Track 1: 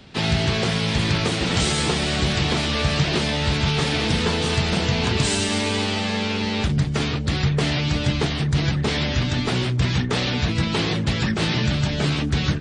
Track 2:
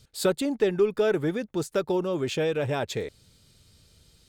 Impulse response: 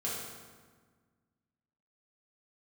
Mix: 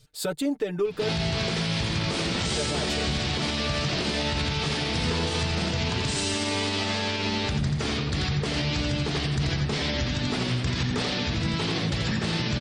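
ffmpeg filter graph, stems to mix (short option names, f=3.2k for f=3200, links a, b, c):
-filter_complex "[0:a]equalizer=f=5k:t=o:w=0.57:g=3.5,adelay=850,volume=-2dB,asplit=2[a][b];[b]volume=-4dB[c];[1:a]aecho=1:1:6.7:0.74,volume=-2.5dB,asplit=3[d][e][f];[d]atrim=end=1.09,asetpts=PTS-STARTPTS,afade=t=out:st=1.086:d=0.004:c=hsin[g];[e]atrim=start=1.09:end=2.57,asetpts=PTS-STARTPTS,volume=0[h];[f]atrim=start=2.57,asetpts=PTS-STARTPTS,afade=t=in:d=0.004:c=hsin[i];[g][h][i]concat=n=3:v=0:a=1[j];[c]aecho=0:1:85:1[k];[a][j][k]amix=inputs=3:normalize=0,alimiter=limit=-17.5dB:level=0:latency=1:release=102"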